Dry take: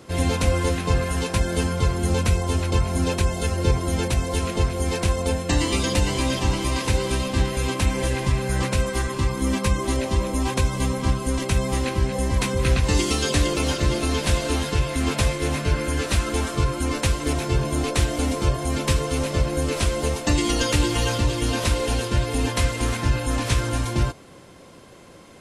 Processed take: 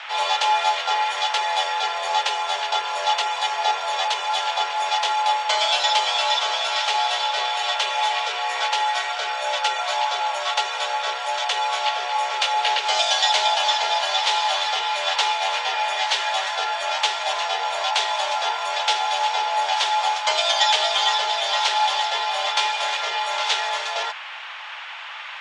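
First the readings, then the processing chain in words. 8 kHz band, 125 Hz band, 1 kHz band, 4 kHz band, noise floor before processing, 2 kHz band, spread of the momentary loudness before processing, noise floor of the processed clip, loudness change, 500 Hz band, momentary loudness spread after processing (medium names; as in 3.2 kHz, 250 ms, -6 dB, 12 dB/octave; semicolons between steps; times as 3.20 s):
-2.0 dB, under -40 dB, +11.0 dB, +9.5 dB, -45 dBFS, +5.0 dB, 3 LU, -35 dBFS, +2.0 dB, -4.0 dB, 5 LU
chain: cabinet simulation 470–5900 Hz, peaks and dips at 530 Hz +6 dB, 930 Hz -6 dB, 3.1 kHz +8 dB; frequency shift +330 Hz; band noise 930–3200 Hz -40 dBFS; trim +4 dB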